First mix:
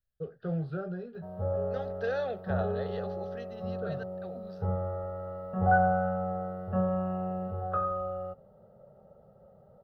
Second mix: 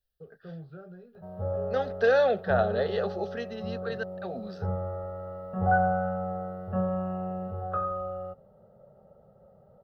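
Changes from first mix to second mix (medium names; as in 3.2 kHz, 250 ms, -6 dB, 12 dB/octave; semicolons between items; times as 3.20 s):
first voice -10.0 dB; second voice +10.0 dB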